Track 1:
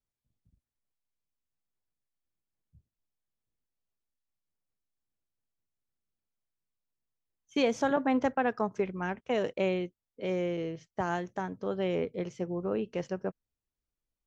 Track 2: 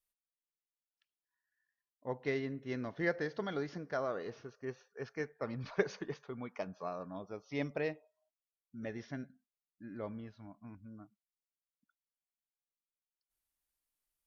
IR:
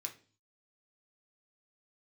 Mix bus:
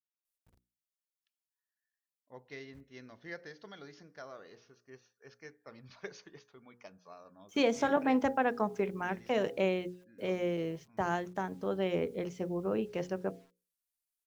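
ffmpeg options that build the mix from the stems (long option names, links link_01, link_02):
-filter_complex "[0:a]bandreject=frequency=135.3:width_type=h:width=4,bandreject=frequency=270.6:width_type=h:width=4,bandreject=frequency=405.9:width_type=h:width=4,bandreject=frequency=541.2:width_type=h:width=4,bandreject=frequency=676.5:width_type=h:width=4,bandreject=frequency=811.8:width_type=h:width=4,acrusher=bits=10:mix=0:aa=0.000001,volume=-0.5dB[link_01];[1:a]highshelf=frequency=2500:gain=12,adelay=250,volume=-12.5dB[link_02];[link_01][link_02]amix=inputs=2:normalize=0,bandreject=frequency=60:width_type=h:width=6,bandreject=frequency=120:width_type=h:width=6,bandreject=frequency=180:width_type=h:width=6,bandreject=frequency=240:width_type=h:width=6,bandreject=frequency=300:width_type=h:width=6,bandreject=frequency=360:width_type=h:width=6,bandreject=frequency=420:width_type=h:width=6,bandreject=frequency=480:width_type=h:width=6,bandreject=frequency=540:width_type=h:width=6"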